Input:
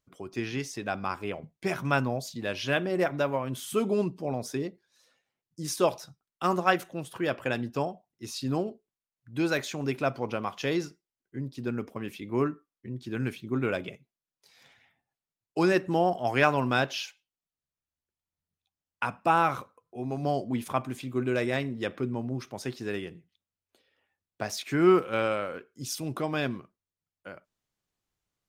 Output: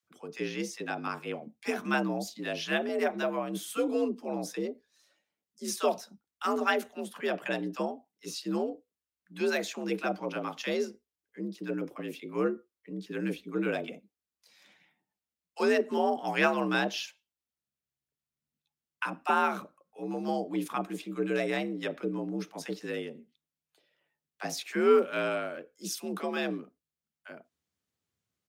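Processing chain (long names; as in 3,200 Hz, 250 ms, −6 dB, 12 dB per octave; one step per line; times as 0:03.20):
multiband delay without the direct sound highs, lows 30 ms, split 800 Hz
frequency shifter +63 Hz
level −1.5 dB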